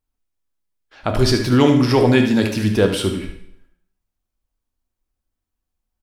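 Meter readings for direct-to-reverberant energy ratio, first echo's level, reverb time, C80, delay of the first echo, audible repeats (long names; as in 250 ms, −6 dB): 3.5 dB, −9.5 dB, 0.70 s, 11.0 dB, 75 ms, 1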